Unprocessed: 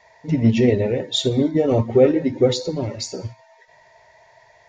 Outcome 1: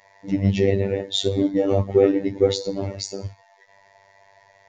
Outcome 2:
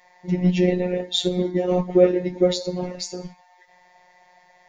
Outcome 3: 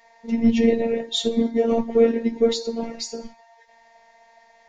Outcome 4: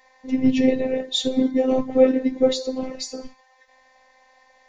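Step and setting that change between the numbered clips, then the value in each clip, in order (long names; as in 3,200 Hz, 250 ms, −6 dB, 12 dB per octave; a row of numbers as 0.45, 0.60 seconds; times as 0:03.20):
phases set to zero, frequency: 98, 180, 230, 260 Hertz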